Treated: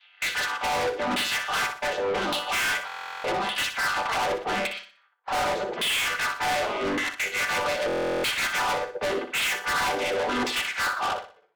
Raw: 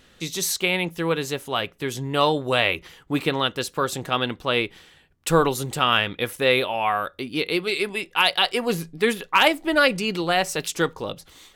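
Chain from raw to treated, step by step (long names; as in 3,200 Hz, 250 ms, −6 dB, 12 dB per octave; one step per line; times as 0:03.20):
channel vocoder with a chord as carrier major triad, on G3
gate on every frequency bin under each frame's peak −15 dB weak
noise gate −55 dBFS, range −17 dB
low-pass that shuts in the quiet parts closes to 2,800 Hz, open at −34 dBFS
in parallel at −1 dB: speech leveller within 4 dB 0.5 s
on the sum: auto-filter band-pass saw down 0.86 Hz 270–3,500 Hz
mid-hump overdrive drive 36 dB, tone 3,900 Hz, clips at −7.5 dBFS
soft clipping −24.5 dBFS, distortion −8 dB
on a send: flutter between parallel walls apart 10.4 metres, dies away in 0.39 s
on the sum: buffer that repeats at 0:02.87/0:07.87, samples 1,024, times 15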